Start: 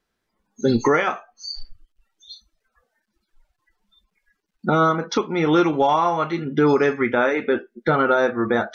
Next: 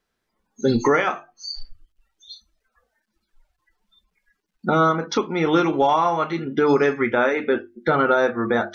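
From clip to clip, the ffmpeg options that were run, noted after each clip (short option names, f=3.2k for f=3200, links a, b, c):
-af "bandreject=f=50:t=h:w=6,bandreject=f=100:t=h:w=6,bandreject=f=150:t=h:w=6,bandreject=f=200:t=h:w=6,bandreject=f=250:t=h:w=6,bandreject=f=300:t=h:w=6,bandreject=f=350:t=h:w=6"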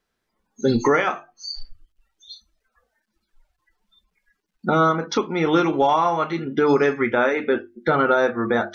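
-af anull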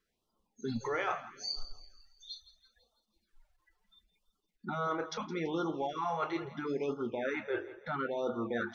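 -af "areverse,acompressor=threshold=-25dB:ratio=16,areverse,aecho=1:1:166|332|498|664|830:0.158|0.0808|0.0412|0.021|0.0107,afftfilt=real='re*(1-between(b*sr/1024,200*pow(2100/200,0.5+0.5*sin(2*PI*0.75*pts/sr))/1.41,200*pow(2100/200,0.5+0.5*sin(2*PI*0.75*pts/sr))*1.41))':imag='im*(1-between(b*sr/1024,200*pow(2100/200,0.5+0.5*sin(2*PI*0.75*pts/sr))/1.41,200*pow(2100/200,0.5+0.5*sin(2*PI*0.75*pts/sr))*1.41))':win_size=1024:overlap=0.75,volume=-5dB"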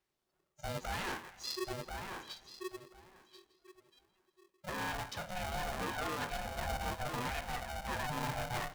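-filter_complex "[0:a]aeval=exprs='0.0335*(abs(mod(val(0)/0.0335+3,4)-2)-1)':c=same,asplit=2[a][b];[b]adelay=1037,lowpass=f=1.5k:p=1,volume=-3.5dB,asplit=2[c][d];[d]adelay=1037,lowpass=f=1.5k:p=1,volume=0.15,asplit=2[e][f];[f]adelay=1037,lowpass=f=1.5k:p=1,volume=0.15[g];[a][c][e][g]amix=inputs=4:normalize=0,aeval=exprs='val(0)*sgn(sin(2*PI*370*n/s))':c=same,volume=-3dB"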